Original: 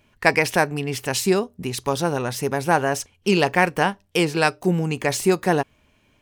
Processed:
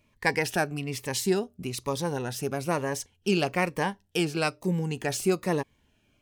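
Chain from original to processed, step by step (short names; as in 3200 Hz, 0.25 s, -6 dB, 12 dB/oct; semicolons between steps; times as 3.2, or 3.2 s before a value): cascading phaser falling 1.1 Hz; gain -5.5 dB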